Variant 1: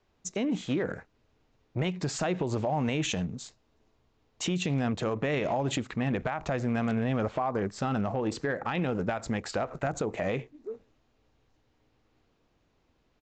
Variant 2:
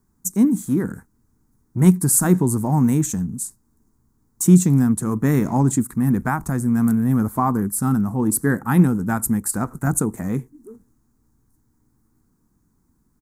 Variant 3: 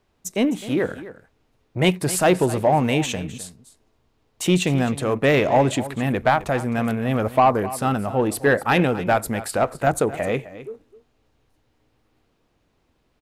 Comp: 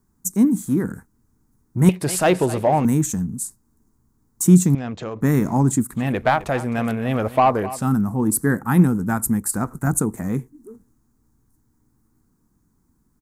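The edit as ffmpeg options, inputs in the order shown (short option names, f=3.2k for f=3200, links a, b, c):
-filter_complex "[2:a]asplit=2[a][b];[1:a]asplit=4[c][d][e][f];[c]atrim=end=1.892[g];[a]atrim=start=1.888:end=2.852[h];[d]atrim=start=2.848:end=4.752[i];[0:a]atrim=start=4.748:end=5.212[j];[e]atrim=start=5.208:end=6.08[k];[b]atrim=start=5.92:end=7.89[l];[f]atrim=start=7.73[m];[g][h]acrossfade=d=0.004:c1=hsin:c2=hsin[n];[n][i]acrossfade=d=0.004:c1=hsin:c2=hsin[o];[o][j]acrossfade=d=0.004:c1=hsin:c2=hsin[p];[p][k]acrossfade=d=0.004:c1=hsin:c2=hsin[q];[q][l]acrossfade=d=0.16:c1=tri:c2=tri[r];[r][m]acrossfade=d=0.16:c1=tri:c2=tri"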